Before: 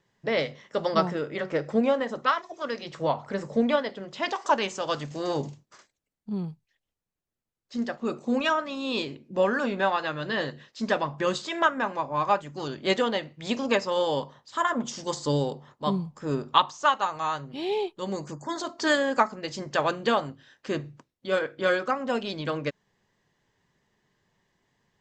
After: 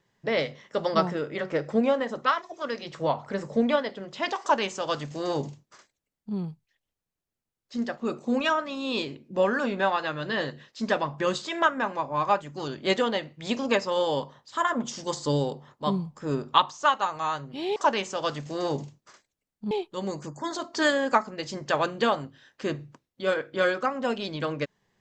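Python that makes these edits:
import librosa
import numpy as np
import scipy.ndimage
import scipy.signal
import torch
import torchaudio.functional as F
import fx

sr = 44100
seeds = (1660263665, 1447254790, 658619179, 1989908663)

y = fx.edit(x, sr, fx.duplicate(start_s=4.41, length_s=1.95, to_s=17.76), tone=tone)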